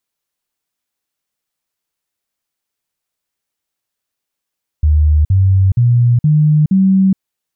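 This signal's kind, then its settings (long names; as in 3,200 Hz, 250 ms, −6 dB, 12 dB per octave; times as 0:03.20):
stepped sweep 75.9 Hz up, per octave 3, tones 5, 0.42 s, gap 0.05 s −7 dBFS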